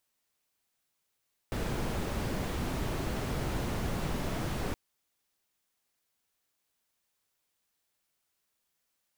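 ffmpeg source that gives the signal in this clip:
-f lavfi -i "anoisesrc=c=brown:a=0.111:d=3.22:r=44100:seed=1"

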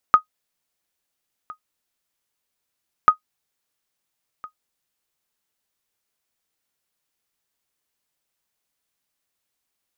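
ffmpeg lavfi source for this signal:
-f lavfi -i "aevalsrc='0.75*(sin(2*PI*1250*mod(t,2.94))*exp(-6.91*mod(t,2.94)/0.1)+0.0668*sin(2*PI*1250*max(mod(t,2.94)-1.36,0))*exp(-6.91*max(mod(t,2.94)-1.36,0)/0.1))':d=5.88:s=44100"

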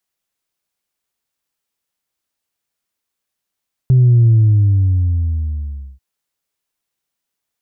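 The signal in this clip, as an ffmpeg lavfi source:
-f lavfi -i "aevalsrc='0.447*clip((2.09-t)/1.72,0,1)*tanh(1*sin(2*PI*130*2.09/log(65/130)*(exp(log(65/130)*t/2.09)-1)))/tanh(1)':d=2.09:s=44100"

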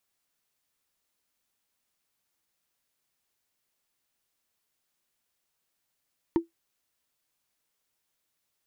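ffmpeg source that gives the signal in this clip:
-f lavfi -i "aevalsrc='0.168*pow(10,-3*t/0.14)*sin(2*PI*334*t)+0.0531*pow(10,-3*t/0.041)*sin(2*PI*920.8*t)+0.0168*pow(10,-3*t/0.018)*sin(2*PI*1804.9*t)+0.00531*pow(10,-3*t/0.01)*sin(2*PI*2983.6*t)+0.00168*pow(10,-3*t/0.006)*sin(2*PI*4455.6*t)':d=0.45:s=44100"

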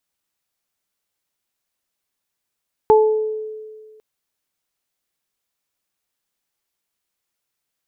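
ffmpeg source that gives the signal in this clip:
-f lavfi -i "aevalsrc='0.398*pow(10,-3*t/1.78)*sin(2*PI*433*t)+0.282*pow(10,-3*t/0.55)*sin(2*PI*866*t)':d=1.1:s=44100"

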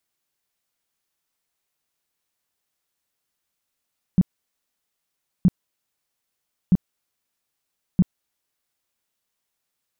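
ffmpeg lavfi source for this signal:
-f lavfi -i "aevalsrc='0.299*sin(2*PI*182*mod(t,1.27))*lt(mod(t,1.27),6/182)':d=5.08:s=44100"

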